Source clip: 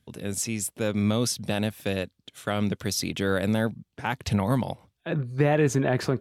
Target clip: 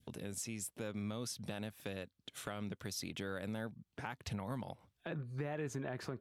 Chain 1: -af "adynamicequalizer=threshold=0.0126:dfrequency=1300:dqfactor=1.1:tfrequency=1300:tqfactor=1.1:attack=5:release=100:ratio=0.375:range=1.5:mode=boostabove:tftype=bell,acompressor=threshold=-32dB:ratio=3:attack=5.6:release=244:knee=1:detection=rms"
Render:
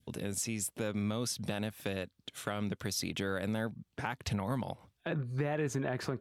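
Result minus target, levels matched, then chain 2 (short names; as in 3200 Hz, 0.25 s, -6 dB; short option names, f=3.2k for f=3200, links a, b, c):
compressor: peak gain reduction -7 dB
-af "adynamicequalizer=threshold=0.0126:dfrequency=1300:dqfactor=1.1:tfrequency=1300:tqfactor=1.1:attack=5:release=100:ratio=0.375:range=1.5:mode=boostabove:tftype=bell,acompressor=threshold=-42.5dB:ratio=3:attack=5.6:release=244:knee=1:detection=rms"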